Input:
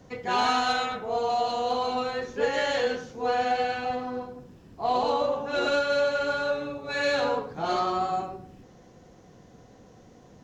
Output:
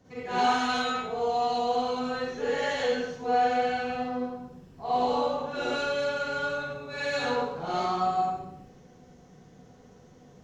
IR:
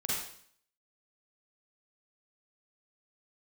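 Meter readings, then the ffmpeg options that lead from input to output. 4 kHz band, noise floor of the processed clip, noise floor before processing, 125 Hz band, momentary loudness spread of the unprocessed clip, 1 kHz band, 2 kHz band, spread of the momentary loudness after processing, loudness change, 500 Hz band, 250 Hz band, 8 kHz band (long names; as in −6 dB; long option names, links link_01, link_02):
−2.5 dB, −54 dBFS, −53 dBFS, +0.5 dB, 8 LU, −0.5 dB, −2.0 dB, 8 LU, −1.5 dB, −2.5 dB, +1.0 dB, −1.5 dB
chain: -filter_complex "[1:a]atrim=start_sample=2205[link_01];[0:a][link_01]afir=irnorm=-1:irlink=0,volume=-7dB"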